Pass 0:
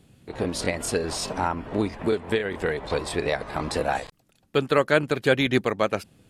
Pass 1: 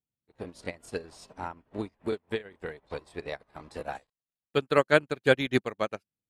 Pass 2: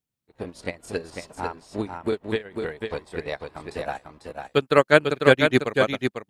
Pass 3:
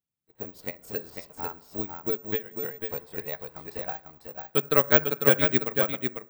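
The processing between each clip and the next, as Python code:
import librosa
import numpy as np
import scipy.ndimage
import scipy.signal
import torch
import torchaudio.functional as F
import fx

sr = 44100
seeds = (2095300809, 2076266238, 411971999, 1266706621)

y1 = fx.upward_expand(x, sr, threshold_db=-43.0, expansion=2.5)
y2 = y1 + 10.0 ** (-5.5 / 20.0) * np.pad(y1, (int(497 * sr / 1000.0), 0))[:len(y1)]
y2 = y2 * librosa.db_to_amplitude(5.5)
y3 = fx.rev_fdn(y2, sr, rt60_s=0.8, lf_ratio=1.0, hf_ratio=0.3, size_ms=40.0, drr_db=16.0)
y3 = (np.kron(scipy.signal.resample_poly(y3, 1, 2), np.eye(2)[0]) * 2)[:len(y3)]
y3 = y3 * librosa.db_to_amplitude(-7.0)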